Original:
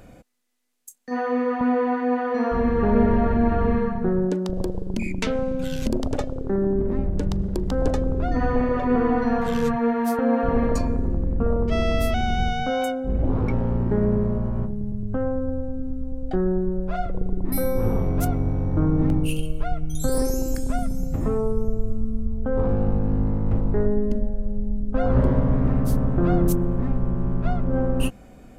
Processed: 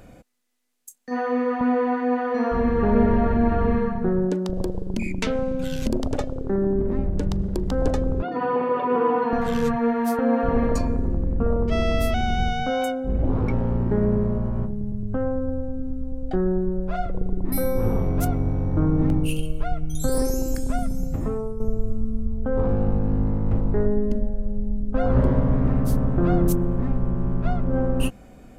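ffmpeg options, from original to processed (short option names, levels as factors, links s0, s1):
-filter_complex "[0:a]asettb=1/sr,asplit=3[s0][s1][s2];[s0]atrim=end=8.224[s3];[s1]atrim=start=8.22:end=9.33,asetpts=PTS-STARTPTS,afade=t=in:d=0.004:c=qsin,afade=t=out:st=1.106:d=0.004:c=qsin,highpass=f=180:w=0.5412,highpass=f=180:w=1.3066,equalizer=f=240:t=q:w=4:g=-7,equalizer=f=450:t=q:w=4:g=4,equalizer=f=650:t=q:w=4:g=-5,equalizer=f=970:t=q:w=4:g=8,equalizer=f=1900:t=q:w=4:g=-6,equalizer=f=2900:t=q:w=4:g=4,lowpass=f=3800:w=0.5412,lowpass=f=3800:w=1.3066[s4];[s2]atrim=start=9.326[s5];[s3][s4]acrossfade=d=0.004:c1=hsin:c2=qsin[s6];[s6][s5]acrossfade=d=0.004:c1=qsin:c2=hsin,asplit=2[s7][s8];[s7]atrim=end=21.6,asetpts=PTS-STARTPTS,afade=t=out:st=21.06:d=0.54:silence=0.354813[s9];[s8]atrim=start=21.6,asetpts=PTS-STARTPTS,afade=t=in:d=0.004:c=hsin:silence=0.354813[s10];[s9][s10]concat=n=2:v=0:a=1"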